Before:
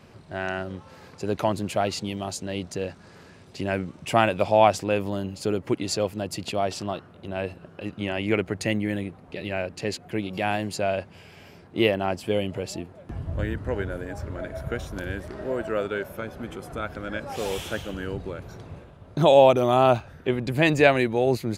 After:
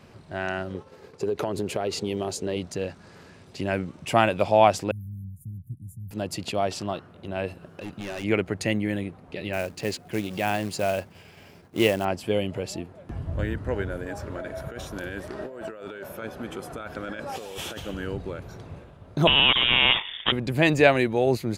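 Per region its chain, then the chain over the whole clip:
0.74–2.57 s: expander -43 dBFS + peaking EQ 420 Hz +13 dB 0.53 oct + compression 10:1, threshold -22 dBFS
4.91–6.11 s: inverse Chebyshev band-stop 450–4900 Hz, stop band 60 dB + treble shelf 11 kHz -6.5 dB + tape noise reduction on one side only encoder only
7.48–8.24 s: treble shelf 8 kHz +8.5 dB + hard clipper -30.5 dBFS
9.53–12.05 s: expander -47 dBFS + short-mantissa float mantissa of 2-bit
14.06–17.80 s: bass shelf 130 Hz -10 dB + compressor with a negative ratio -35 dBFS + band-stop 2.1 kHz, Q 20
19.27–20.32 s: companding laws mixed up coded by A + frequency inversion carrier 3.5 kHz + spectrum-flattening compressor 2:1
whole clip: none

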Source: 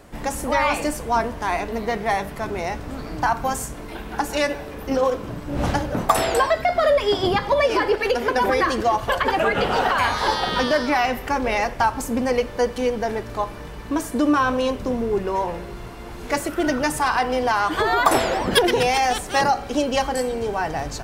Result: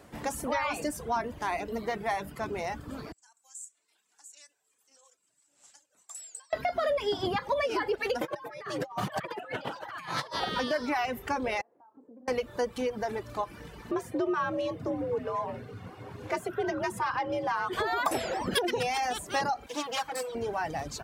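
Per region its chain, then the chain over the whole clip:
3.12–6.53 s: upward compressor, threshold -27 dBFS + band-pass filter 7.6 kHz, Q 7.6
8.21–10.40 s: frequency shift +80 Hz + compressor with a negative ratio -27 dBFS, ratio -0.5
11.61–12.28 s: doubling 32 ms -8.5 dB + compression 16:1, threshold -28 dBFS + ladder band-pass 420 Hz, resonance 25%
13.91–17.73 s: frequency shift +62 Hz + treble shelf 3.6 kHz -10 dB
19.66–20.35 s: comb filter that takes the minimum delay 6.2 ms + bass shelf 370 Hz -12 dB
whole clip: high-pass 74 Hz; compression 2:1, threshold -22 dBFS; reverb removal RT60 0.78 s; trim -5.5 dB

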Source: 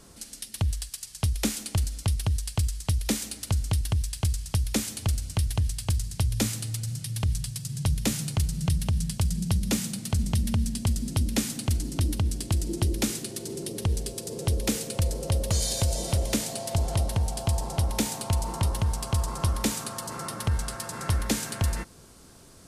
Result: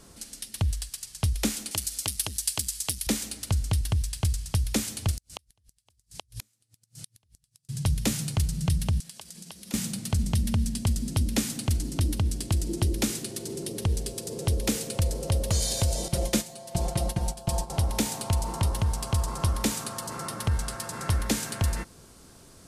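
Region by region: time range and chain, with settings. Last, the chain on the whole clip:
1.71–3.07 s: tilt EQ +3.5 dB/octave + transformer saturation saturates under 1.3 kHz
5.11–7.69 s: tone controls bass -7 dB, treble +4 dB + inverted gate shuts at -20 dBFS, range -41 dB
9.00–9.74 s: high-pass 480 Hz + compression, threshold -39 dBFS
16.08–17.70 s: gate -30 dBFS, range -12 dB + comb 5.7 ms, depth 73%
whole clip: none

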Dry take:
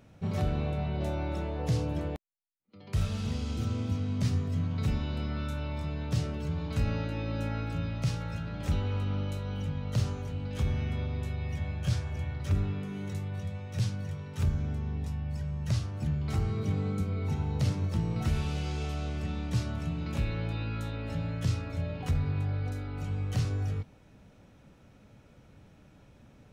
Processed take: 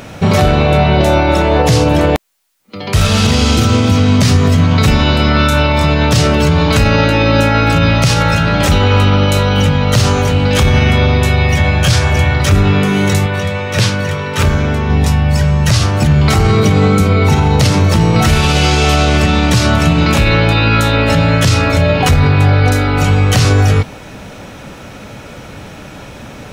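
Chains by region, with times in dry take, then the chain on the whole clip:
13.26–14.90 s: tone controls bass -6 dB, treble -6 dB + band-stop 760 Hz, Q 11
whole clip: bass shelf 350 Hz -10 dB; loudness maximiser +32.5 dB; trim -1 dB

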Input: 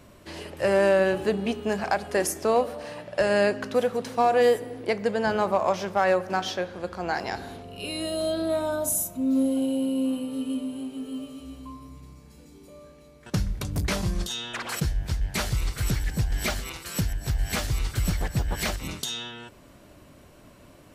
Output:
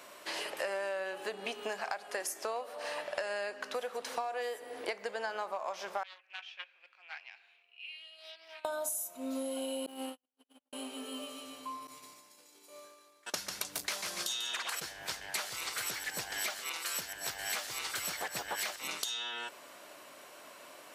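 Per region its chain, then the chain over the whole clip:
6.03–8.65 s: gate -28 dBFS, range -8 dB + band-pass filter 2.5 kHz, Q 9.1 + loudspeaker Doppler distortion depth 0.33 ms
9.86–10.73 s: comb filter that takes the minimum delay 0.33 ms + gate -25 dBFS, range -59 dB
11.87–14.70 s: expander -42 dBFS + treble shelf 2.7 kHz +7 dB + feedback delay 143 ms, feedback 42%, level -7.5 dB
whole clip: high-pass 690 Hz 12 dB/octave; compression 12:1, threshold -39 dBFS; trim +5.5 dB

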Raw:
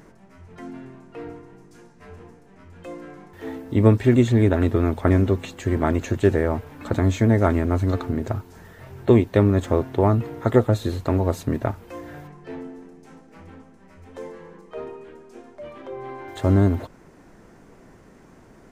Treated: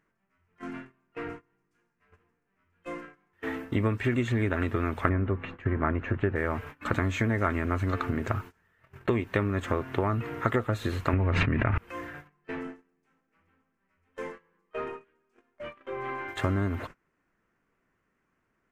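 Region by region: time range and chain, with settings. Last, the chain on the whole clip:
5.09–6.36 s: low-pass 1.7 kHz + bass shelf 120 Hz +5 dB
11.13–11.78 s: resonant low-pass 2.4 kHz, resonance Q 2.2 + bass shelf 260 Hz +11.5 dB + level flattener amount 100%
whole clip: gate -37 dBFS, range -26 dB; compression, threshold -22 dBFS; high-order bell 1.8 kHz +10 dB; trim -2 dB

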